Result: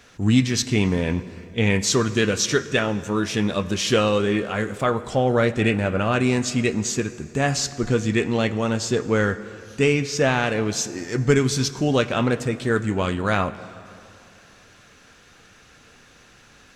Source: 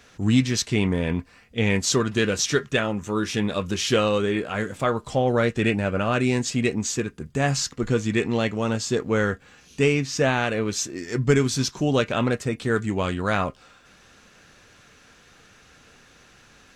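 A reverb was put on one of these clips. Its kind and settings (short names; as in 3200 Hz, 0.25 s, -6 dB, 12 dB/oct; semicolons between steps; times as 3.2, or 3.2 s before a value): plate-style reverb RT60 2.8 s, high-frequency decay 0.65×, DRR 13.5 dB; gain +1.5 dB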